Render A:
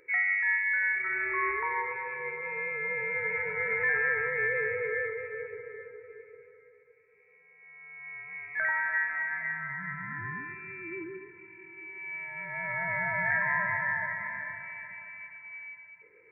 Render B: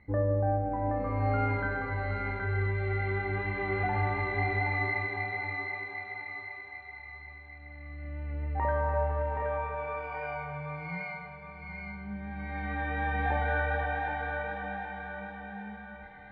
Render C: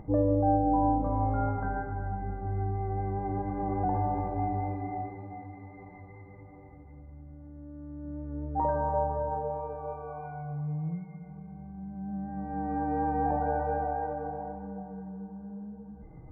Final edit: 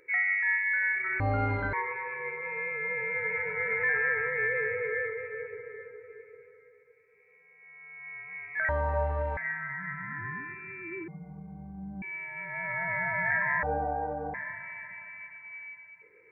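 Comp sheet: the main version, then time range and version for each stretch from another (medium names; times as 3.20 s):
A
1.20–1.73 s: from B
8.69–9.37 s: from B
11.08–12.02 s: from C
13.63–14.34 s: from C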